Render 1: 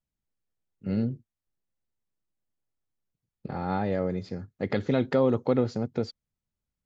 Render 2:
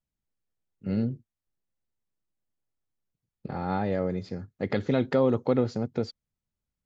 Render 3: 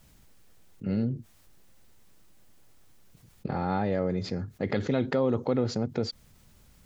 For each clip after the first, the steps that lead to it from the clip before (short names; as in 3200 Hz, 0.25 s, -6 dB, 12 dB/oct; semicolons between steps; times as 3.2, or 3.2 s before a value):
nothing audible
fast leveller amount 50%; gain -3.5 dB